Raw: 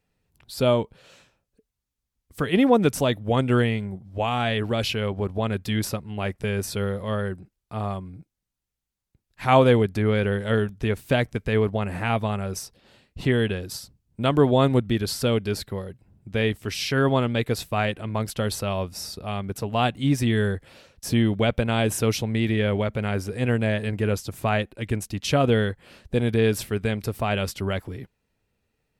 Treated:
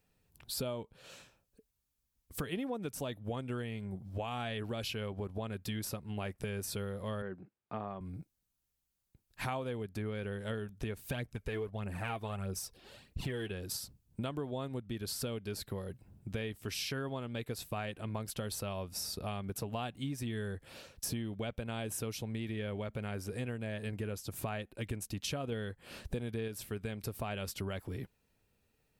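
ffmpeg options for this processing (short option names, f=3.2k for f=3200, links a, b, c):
-filter_complex "[0:a]asettb=1/sr,asplit=3[a][b][c];[a]atrim=end=7.224[d];[b]atrim=start=7.22:end=8.01,asetpts=PTS-STARTPTS,afade=t=in:d=0.004:c=qsin,afade=t=out:st=0.786:d=0.004:c=qsin,highpass=170,lowpass=2.2k[e];[c]atrim=start=8.006[f];[d][e]acrossfade=d=0.004:c1=hsin:c2=qsin[g];[g][f]acrossfade=d=0.004:c1=qsin:c2=hsin,asplit=3[h][i][j];[h]afade=t=out:st=11.03:d=0.02[k];[i]aphaser=in_gain=1:out_gain=1:delay=3:decay=0.5:speed=1.6:type=triangular,afade=t=in:st=11.03:d=0.02,afade=t=out:st=13.5:d=0.02[l];[j]afade=t=in:st=13.5:d=0.02[m];[k][l][m]amix=inputs=3:normalize=0,asplit=3[n][o][p];[n]atrim=end=25.522[q];[o]atrim=start=25.518:end=26.482,asetpts=PTS-STARTPTS,volume=4dB[r];[p]atrim=start=26.478[s];[q][r]acrossfade=d=0.004:c1=hsin:c2=hsin[t];[t][s]acrossfade=d=0.004:c1=hsin:c2=hsin,highshelf=f=9.1k:g=8.5,bandreject=f=2k:w=22,acompressor=threshold=-34dB:ratio=8,volume=-1.5dB"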